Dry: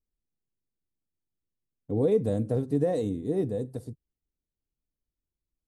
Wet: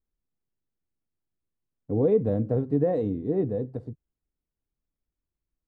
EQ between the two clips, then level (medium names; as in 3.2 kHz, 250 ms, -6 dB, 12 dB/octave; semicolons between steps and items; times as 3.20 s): low-pass 1.8 kHz 12 dB/octave; +2.0 dB